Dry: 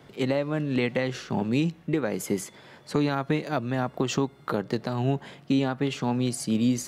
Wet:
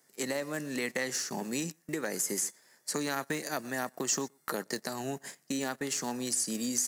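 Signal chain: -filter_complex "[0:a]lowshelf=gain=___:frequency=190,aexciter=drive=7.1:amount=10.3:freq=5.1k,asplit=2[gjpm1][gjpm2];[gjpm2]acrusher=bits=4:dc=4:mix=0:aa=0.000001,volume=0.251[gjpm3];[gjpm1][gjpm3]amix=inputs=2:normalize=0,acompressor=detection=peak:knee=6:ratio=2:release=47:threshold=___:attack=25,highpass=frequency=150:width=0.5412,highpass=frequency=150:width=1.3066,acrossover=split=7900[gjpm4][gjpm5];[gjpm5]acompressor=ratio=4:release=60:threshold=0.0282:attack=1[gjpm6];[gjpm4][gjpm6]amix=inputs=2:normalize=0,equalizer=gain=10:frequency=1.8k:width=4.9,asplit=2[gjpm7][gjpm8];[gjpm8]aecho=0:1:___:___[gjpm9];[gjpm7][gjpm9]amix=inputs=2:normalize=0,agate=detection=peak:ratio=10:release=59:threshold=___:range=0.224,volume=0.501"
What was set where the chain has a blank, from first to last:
-10, 0.0355, 121, 0.0944, 0.0112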